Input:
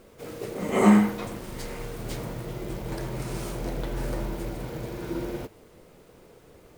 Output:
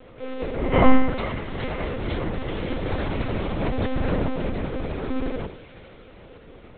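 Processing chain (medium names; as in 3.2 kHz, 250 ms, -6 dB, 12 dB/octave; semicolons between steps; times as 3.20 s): 2.34–3.29 s: treble shelf 2.1 kHz +6.5 dB; feedback echo behind a high-pass 430 ms, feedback 59%, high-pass 1.9 kHz, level -9.5 dB; FDN reverb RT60 0.57 s, low-frequency decay 0.95×, high-frequency decay 0.55×, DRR 8.5 dB; monotone LPC vocoder at 8 kHz 260 Hz; trim +6 dB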